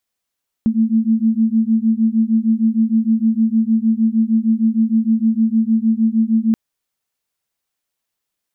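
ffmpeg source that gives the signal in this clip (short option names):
-f lavfi -i "aevalsrc='0.168*(sin(2*PI*220*t)+sin(2*PI*226.5*t))':d=5.88:s=44100"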